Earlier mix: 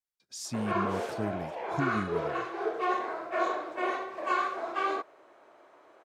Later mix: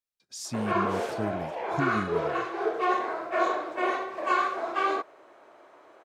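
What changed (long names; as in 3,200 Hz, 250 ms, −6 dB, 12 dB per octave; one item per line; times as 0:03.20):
speech: send +7.0 dB
background +3.5 dB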